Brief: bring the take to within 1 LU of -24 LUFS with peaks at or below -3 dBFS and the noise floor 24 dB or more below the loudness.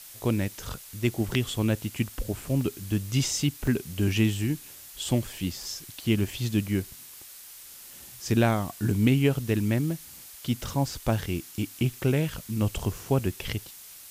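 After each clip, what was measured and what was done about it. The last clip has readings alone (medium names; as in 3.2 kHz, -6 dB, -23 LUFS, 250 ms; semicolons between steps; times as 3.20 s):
dropouts 2; longest dropout 3.4 ms; noise floor -46 dBFS; noise floor target -52 dBFS; loudness -28.0 LUFS; peak level -10.5 dBFS; loudness target -24.0 LUFS
-> interpolate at 2.61/3.67 s, 3.4 ms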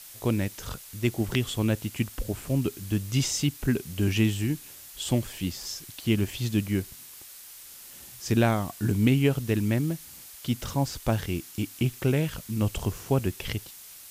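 dropouts 0; noise floor -46 dBFS; noise floor target -52 dBFS
-> noise print and reduce 6 dB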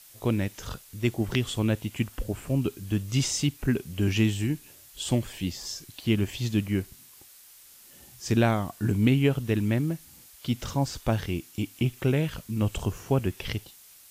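noise floor -52 dBFS; loudness -28.0 LUFS; peak level -10.5 dBFS; loudness target -24.0 LUFS
-> trim +4 dB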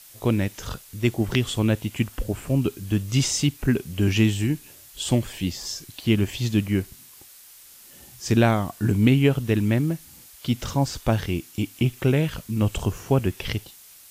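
loudness -24.0 LUFS; peak level -6.5 dBFS; noise floor -48 dBFS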